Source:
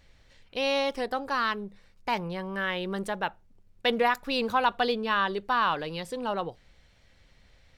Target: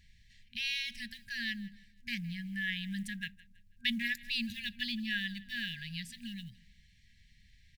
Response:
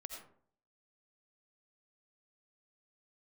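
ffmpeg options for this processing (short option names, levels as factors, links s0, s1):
-af "acrusher=bits=9:mode=log:mix=0:aa=0.000001,aecho=1:1:163|326|489:0.0891|0.0312|0.0109,afftfilt=real='re*(1-between(b*sr/4096,240,1600))':imag='im*(1-between(b*sr/4096,240,1600))':win_size=4096:overlap=0.75,volume=0.708"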